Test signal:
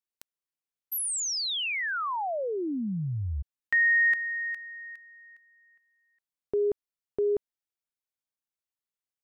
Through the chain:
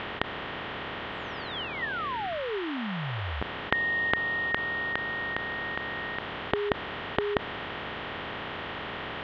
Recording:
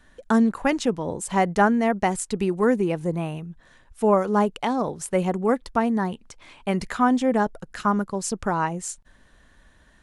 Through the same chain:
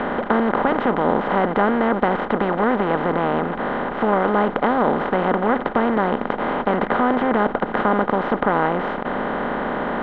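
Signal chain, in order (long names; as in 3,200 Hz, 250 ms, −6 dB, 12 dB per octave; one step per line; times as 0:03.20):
compressor on every frequency bin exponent 0.2
dynamic equaliser 2,500 Hz, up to −7 dB, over −38 dBFS, Q 3.3
elliptic low-pass filter 3,200 Hz, stop band 80 dB
level −4.5 dB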